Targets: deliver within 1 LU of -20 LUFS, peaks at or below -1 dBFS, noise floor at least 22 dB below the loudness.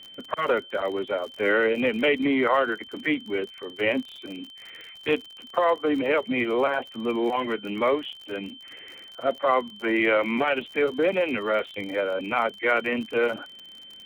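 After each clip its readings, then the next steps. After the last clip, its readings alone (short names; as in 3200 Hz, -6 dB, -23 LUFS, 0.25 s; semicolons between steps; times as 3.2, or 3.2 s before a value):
ticks 46/s; steady tone 3100 Hz; tone level -43 dBFS; loudness -25.5 LUFS; peak -10.0 dBFS; loudness target -20.0 LUFS
-> de-click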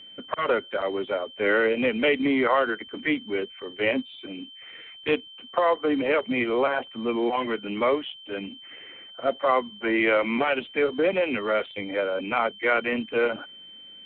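ticks 0/s; steady tone 3100 Hz; tone level -43 dBFS
-> notch 3100 Hz, Q 30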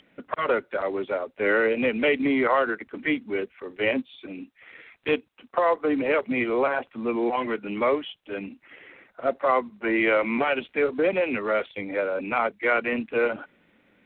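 steady tone none; loudness -25.5 LUFS; peak -10.0 dBFS; loudness target -20.0 LUFS
-> gain +5.5 dB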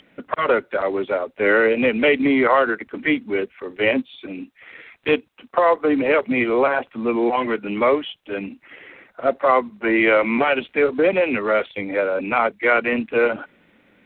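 loudness -20.0 LUFS; peak -4.5 dBFS; noise floor -58 dBFS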